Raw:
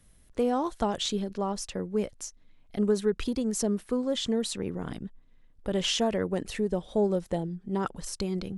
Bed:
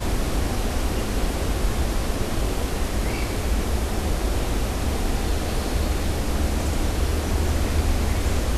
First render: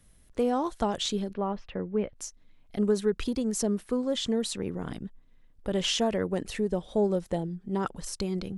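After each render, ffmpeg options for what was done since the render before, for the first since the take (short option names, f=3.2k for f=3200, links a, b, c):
-filter_complex "[0:a]asettb=1/sr,asplit=3[a][b][c];[a]atrim=end=1.334[d];[b]atrim=start=1.33:end=2.16,asetpts=PTS-STARTPTS,afade=t=in:d=0.004:c=qsin,afade=t=out:st=0.826:d=0.004:c=qsin,lowpass=f=2.9k:w=0.5412,lowpass=f=2.9k:w=1.3066[e];[c]atrim=start=2.156[f];[d][e]acrossfade=d=0.004:c1=hsin:c2=qsin[g];[g][f]acrossfade=d=0.004:c1=qsin:c2=hsin"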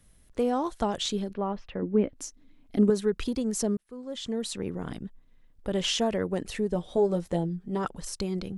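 -filter_complex "[0:a]asettb=1/sr,asplit=3[a][b][c];[a]atrim=end=1.824[d];[b]atrim=start=1.82:end=2.9,asetpts=PTS-STARTPTS,afade=t=in:d=0.004:c=qsin,afade=t=out:st=1.076:d=0.004:c=qsin,equalizer=f=280:t=o:w=0.65:g=14.5[e];[c]atrim=start=2.896[f];[d][e]acrossfade=d=0.004:c1=hsin:c2=qsin[g];[g][f]acrossfade=d=0.004:c1=qsin:c2=hsin,asettb=1/sr,asplit=3[h][i][j];[h]atrim=end=6.744[k];[i]atrim=start=6.74:end=7.85,asetpts=PTS-STARTPTS,afade=t=in:d=0.004:c=qsin,afade=t=out:st=1.106:d=0.004:c=qsin,asplit=2[l][m];[m]adelay=12,volume=-5.5dB[n];[l][n]amix=inputs=2:normalize=0,atrim=end_sample=48951[o];[j]atrim=start=7.846[p];[k][o]acrossfade=d=0.004:c1=hsin:c2=qsin[q];[q][p]acrossfade=d=0.004:c1=qsin:c2=hsin,asplit=2[r][s];[r]atrim=end=3.77,asetpts=PTS-STARTPTS,afade=t=out:st=3.766:d=0.004:c=hsin[t];[s]atrim=start=3.77,asetpts=PTS-STARTPTS,afade=t=in:d=0.87[u];[t][u]concat=n=2:v=0:a=1"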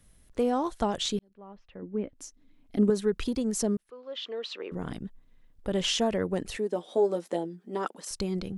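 -filter_complex "[0:a]asettb=1/sr,asplit=3[a][b][c];[a]atrim=end=3.904[d];[b]atrim=start=3.9:end=4.72,asetpts=PTS-STARTPTS,afade=t=in:d=0.004:c=qsin,afade=t=out:st=0.816:d=0.004:c=qsin,highpass=f=390:w=0.5412,highpass=f=390:w=1.3066,equalizer=f=820:t=q:w=4:g=-4,equalizer=f=1.2k:t=q:w=4:g=4,equalizer=f=2.8k:t=q:w=4:g=6,lowpass=f=4.4k:w=0.5412,lowpass=f=4.4k:w=1.3066[e];[c]atrim=start=4.716[f];[d][e]acrossfade=d=0.004:c1=hsin:c2=qsin[g];[g][f]acrossfade=d=0.004:c1=qsin:c2=hsin,asettb=1/sr,asplit=3[h][i][j];[h]atrim=end=6.574[k];[i]atrim=start=6.57:end=8.11,asetpts=PTS-STARTPTS,afade=t=in:d=0.004:c=qsin,afade=t=out:st=1.536:d=0.004:c=qsin,highpass=f=250:w=0.5412,highpass=f=250:w=1.3066[l];[j]atrim=start=8.106[m];[k][l]acrossfade=d=0.004:c1=hsin:c2=qsin[n];[n][m]acrossfade=d=0.004:c1=qsin:c2=hsin,asplit=2[o][p];[o]atrim=end=1.19,asetpts=PTS-STARTPTS,afade=t=out:st=1.186:d=0.004:c=hsin[q];[p]atrim=start=1.19,asetpts=PTS-STARTPTS,afade=t=in:d=1.97[r];[q][r]concat=n=2:v=0:a=1"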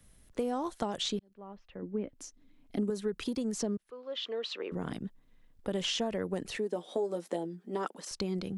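-filter_complex "[0:a]acrossover=split=110|6700[a][b][c];[a]acompressor=threshold=-57dB:ratio=4[d];[b]acompressor=threshold=-30dB:ratio=4[e];[c]acompressor=threshold=-53dB:ratio=4[f];[d][e][f]amix=inputs=3:normalize=0"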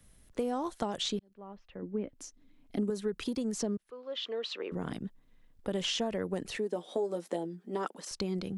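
-af anull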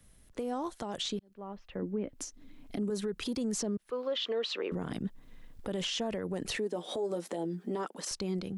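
-af "dynaudnorm=f=760:g=5:m=11dB,alimiter=level_in=2dB:limit=-24dB:level=0:latency=1:release=194,volume=-2dB"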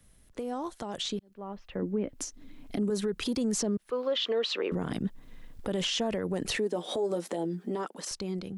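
-af "dynaudnorm=f=230:g=11:m=4dB"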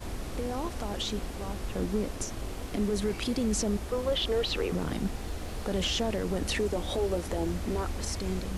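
-filter_complex "[1:a]volume=-13dB[a];[0:a][a]amix=inputs=2:normalize=0"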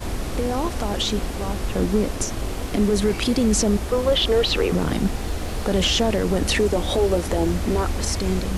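-af "volume=9.5dB"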